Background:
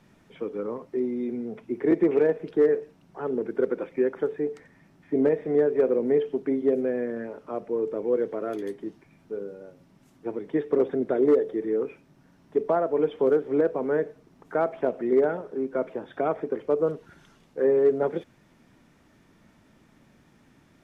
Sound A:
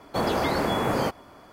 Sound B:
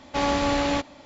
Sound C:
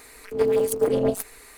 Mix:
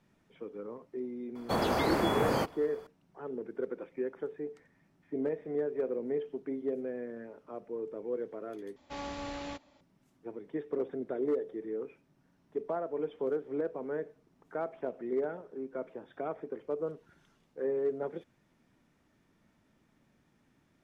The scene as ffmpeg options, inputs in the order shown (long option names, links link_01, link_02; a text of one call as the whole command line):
ffmpeg -i bed.wav -i cue0.wav -i cue1.wav -filter_complex "[0:a]volume=-11dB,asplit=2[link_01][link_02];[link_01]atrim=end=8.764[link_03];[2:a]atrim=end=1.05,asetpts=PTS-STARTPTS,volume=-16.5dB[link_04];[link_02]atrim=start=9.806[link_05];[1:a]atrim=end=1.52,asetpts=PTS-STARTPTS,volume=-4.5dB,afade=type=in:duration=0.004:curve=hsin,afade=type=out:start_time=1.516:duration=0.004:curve=hsin,adelay=1350[link_06];[link_03][link_04]acrossfade=duration=0.004:curve1=hsin:curve2=hsin[link_07];[link_07][link_05]acrossfade=duration=0.004:curve1=hsin:curve2=hsin[link_08];[link_08][link_06]amix=inputs=2:normalize=0" out.wav